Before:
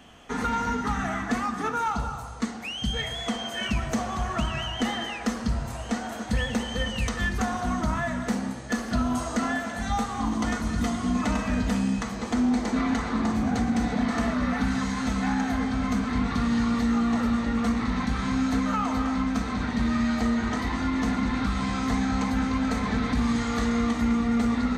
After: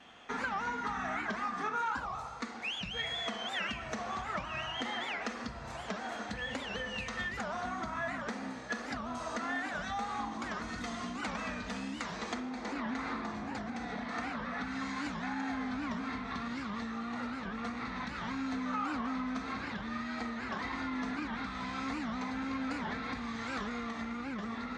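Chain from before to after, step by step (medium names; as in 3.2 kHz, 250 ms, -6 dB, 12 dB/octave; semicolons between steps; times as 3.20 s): compression, threshold -28 dBFS, peak gain reduction 8 dB; treble shelf 3.3 kHz -10 dB, from 10.68 s -5 dB, from 12.37 s -10.5 dB; reverberation RT60 0.90 s, pre-delay 42 ms, DRR 10 dB; vibrato 1.7 Hz 47 cents; low-pass 4.5 kHz 12 dB/octave; tilt EQ +3.5 dB/octave; band-stop 3 kHz, Q 15; warped record 78 rpm, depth 250 cents; trim -2 dB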